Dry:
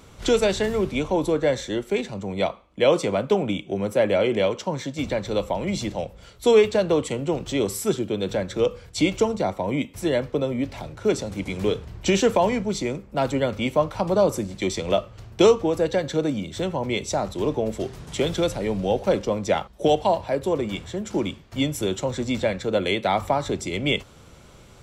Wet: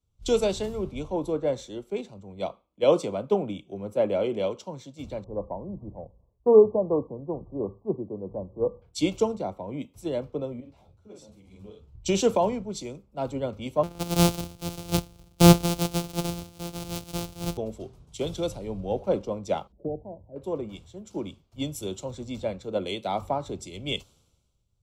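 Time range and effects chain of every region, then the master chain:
5.24–8.82 brick-wall FIR low-pass 1200 Hz + mismatched tape noise reduction decoder only
10.6–11.94 doubler 47 ms -4 dB + compressor 2:1, threshold -28 dBFS + ensemble effect
13.83–17.58 sample sorter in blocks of 256 samples + notch 1000 Hz, Q 11
19.72–20.36 Gaussian blur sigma 16 samples + upward compressor, threshold -36 dBFS
whole clip: bell 1800 Hz -14.5 dB 0.57 oct; three-band expander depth 100%; gain -6 dB

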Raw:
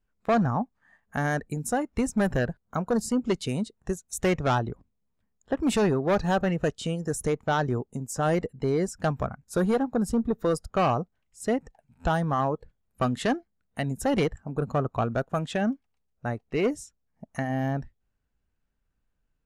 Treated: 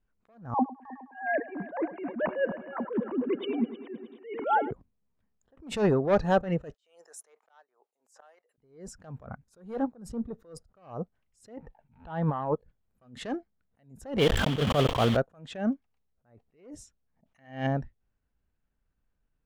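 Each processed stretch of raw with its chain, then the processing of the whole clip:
0.54–4.71 sine-wave speech + bell 960 Hz +7 dB 0.33 oct + multi-head echo 0.104 s, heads first and third, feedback 57%, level -18 dB
6.74–8.58 HPF 610 Hz 24 dB/oct + flipped gate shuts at -22 dBFS, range -29 dB
11.57–12.54 bell 890 Hz +9 dB 0.2 oct + negative-ratio compressor -28 dBFS, ratio -0.5 + LPF 3800 Hz 24 dB/oct
14.19–15.17 block floating point 3-bit + bell 3200 Hz +14 dB 0.4 oct + sustainer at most 22 dB/s
17.26–17.67 bell 3000 Hz +14 dB 1.6 oct + flutter echo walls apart 10.8 m, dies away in 0.22 s
whole clip: LPF 3000 Hz 6 dB/oct; dynamic EQ 530 Hz, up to +5 dB, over -39 dBFS, Q 2.8; attack slew limiter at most 140 dB/s

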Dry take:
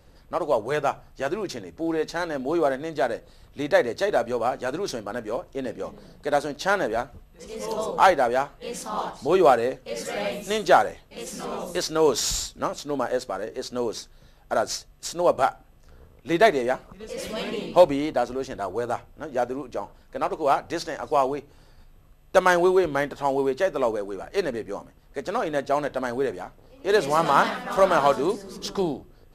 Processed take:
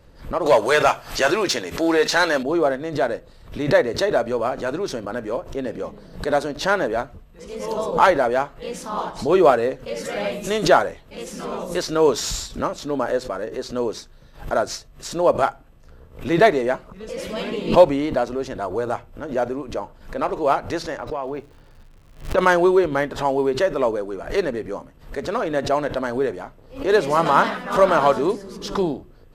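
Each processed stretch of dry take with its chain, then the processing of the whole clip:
0.46–2.43 high shelf 2600 Hz +11.5 dB + overdrive pedal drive 15 dB, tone 6300 Hz, clips at -7.5 dBFS
20.97–22.37 LPF 3900 Hz + compressor 4:1, threshold -27 dBFS + crackle 200/s -46 dBFS
whole clip: high shelf 3900 Hz -6.5 dB; notch 760 Hz, Q 12; backwards sustainer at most 140 dB/s; gain +3.5 dB

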